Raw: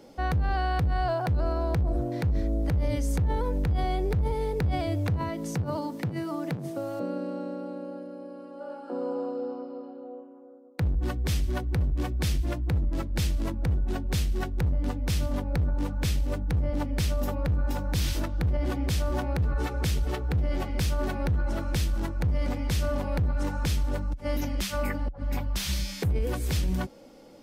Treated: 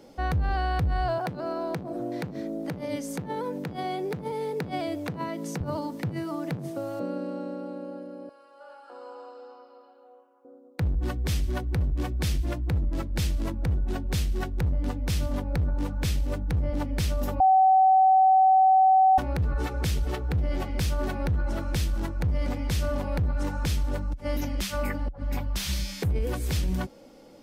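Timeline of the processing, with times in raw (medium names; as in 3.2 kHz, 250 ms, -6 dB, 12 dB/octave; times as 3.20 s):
1.18–5.61 s: high-pass 160 Hz 24 dB/octave
8.29–10.45 s: high-pass 1 kHz
17.40–19.18 s: bleep 760 Hz -15 dBFS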